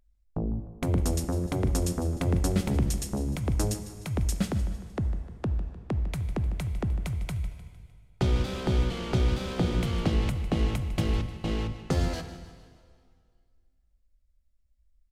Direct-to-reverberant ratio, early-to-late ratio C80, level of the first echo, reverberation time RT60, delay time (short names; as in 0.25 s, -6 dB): 8.5 dB, 10.0 dB, -15.0 dB, 2.0 s, 0.152 s